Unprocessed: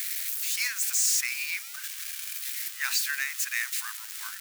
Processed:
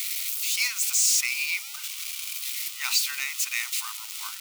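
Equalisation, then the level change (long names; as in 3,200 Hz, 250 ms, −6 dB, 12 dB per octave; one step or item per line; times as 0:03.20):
parametric band 2,000 Hz +11 dB 2.4 octaves
phaser with its sweep stopped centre 450 Hz, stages 6
+1.0 dB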